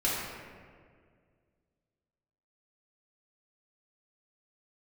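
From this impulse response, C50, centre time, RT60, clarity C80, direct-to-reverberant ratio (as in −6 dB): −1.0 dB, 106 ms, 2.0 s, 1.0 dB, −8.5 dB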